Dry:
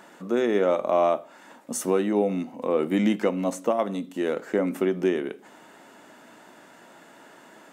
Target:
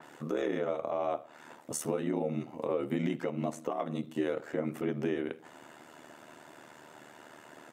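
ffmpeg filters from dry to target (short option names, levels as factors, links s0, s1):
-af "aecho=1:1:6.2:0.63,alimiter=limit=0.106:level=0:latency=1:release=270,aeval=exprs='val(0)*sin(2*PI*38*n/s)':c=same,adynamicequalizer=threshold=0.00158:dfrequency=4400:dqfactor=0.7:tfrequency=4400:tqfactor=0.7:attack=5:release=100:ratio=0.375:range=2.5:mode=cutabove:tftype=highshelf,volume=0.891"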